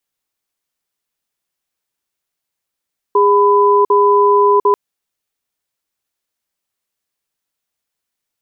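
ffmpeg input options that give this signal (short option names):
-f lavfi -i "aevalsrc='0.299*(sin(2*PI*408*t)+sin(2*PI*1000*t))*clip(min(mod(t,0.75),0.7-mod(t,0.75))/0.005,0,1)':d=1.59:s=44100"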